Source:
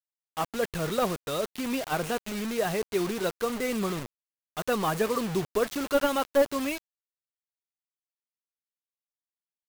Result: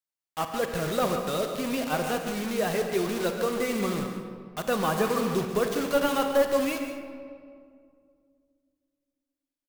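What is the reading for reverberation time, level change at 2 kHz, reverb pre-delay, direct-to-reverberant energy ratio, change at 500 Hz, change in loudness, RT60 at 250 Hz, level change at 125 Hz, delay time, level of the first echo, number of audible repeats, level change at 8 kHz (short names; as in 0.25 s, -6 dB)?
2.2 s, +1.5 dB, 36 ms, 4.0 dB, +1.5 dB, +1.5 dB, 2.8 s, +1.5 dB, 0.142 s, -11.0 dB, 1, +1.0 dB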